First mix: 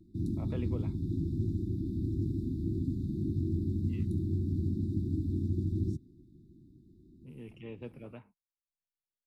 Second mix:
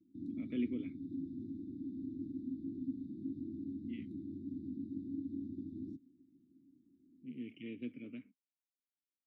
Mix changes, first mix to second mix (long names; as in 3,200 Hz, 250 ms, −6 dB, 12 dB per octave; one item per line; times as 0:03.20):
speech +12.0 dB
master: add formant filter i